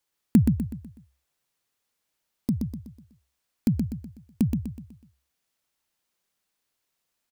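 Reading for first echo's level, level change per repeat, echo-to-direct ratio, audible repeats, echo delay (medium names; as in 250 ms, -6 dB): -5.0 dB, -7.5 dB, -4.0 dB, 4, 124 ms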